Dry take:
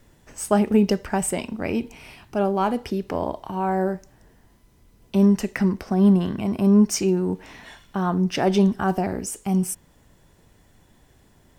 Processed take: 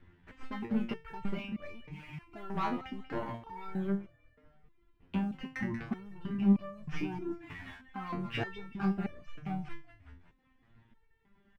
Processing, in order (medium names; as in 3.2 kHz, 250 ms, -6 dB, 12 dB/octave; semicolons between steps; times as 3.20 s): tracing distortion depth 0.045 ms; compression 6:1, threshold -19 dBFS, peak gain reduction 7.5 dB; saturation -16 dBFS, distortion -20 dB; low-pass 2.7 kHz 24 dB/octave; waveshaping leveller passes 1; on a send: frequency-shifting echo 186 ms, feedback 44%, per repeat -38 Hz, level -11 dB; on the sum: reverb removal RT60 0.7 s; peaking EQ 580 Hz -10.5 dB 1 oct; resonator arpeggio 3.2 Hz 88–590 Hz; trim +5.5 dB